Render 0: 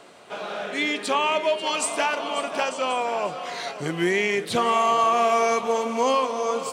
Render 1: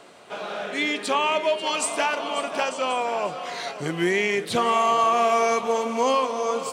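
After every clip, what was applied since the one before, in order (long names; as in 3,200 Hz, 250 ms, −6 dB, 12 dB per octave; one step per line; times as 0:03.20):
no processing that can be heard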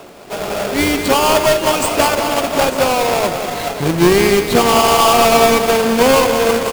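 each half-wave held at its own peak
in parallel at −3.5 dB: sample-rate reduction 2,000 Hz, jitter 0%
on the sum: single-tap delay 191 ms −8 dB
level +3 dB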